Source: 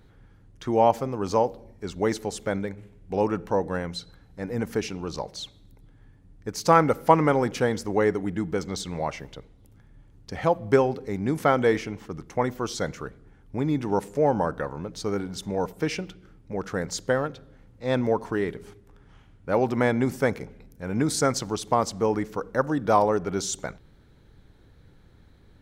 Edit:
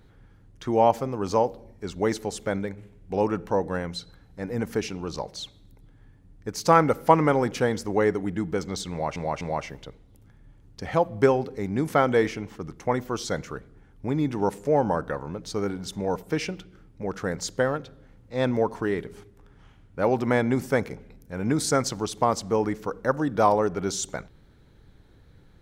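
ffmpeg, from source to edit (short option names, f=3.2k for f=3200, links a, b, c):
-filter_complex "[0:a]asplit=3[a][b][c];[a]atrim=end=9.162[d];[b]atrim=start=8.908:end=9.162[e];[c]atrim=start=8.908[f];[d][e]acrossfade=d=0.004:c1=hsin:c2=hsin[g];[g][f]acrossfade=d=0.004:c1=hsin:c2=hsin"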